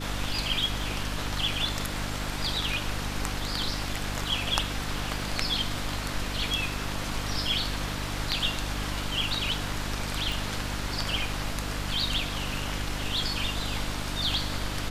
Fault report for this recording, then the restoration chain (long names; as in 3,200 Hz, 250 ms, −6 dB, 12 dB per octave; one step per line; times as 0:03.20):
mains hum 50 Hz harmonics 6 −35 dBFS
0:10.32: click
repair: click removal
hum removal 50 Hz, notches 6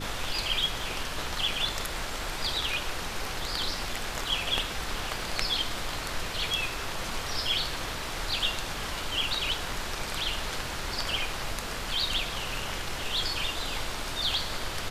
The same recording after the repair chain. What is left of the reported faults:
none of them is left